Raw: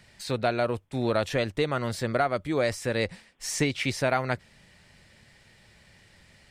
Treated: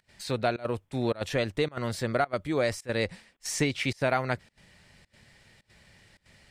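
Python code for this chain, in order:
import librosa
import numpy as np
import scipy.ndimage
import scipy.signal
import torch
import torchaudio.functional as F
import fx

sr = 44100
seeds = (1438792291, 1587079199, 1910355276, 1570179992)

y = fx.volume_shaper(x, sr, bpm=107, per_beat=1, depth_db=-23, release_ms=86.0, shape='slow start')
y = F.gain(torch.from_numpy(y), -1.0).numpy()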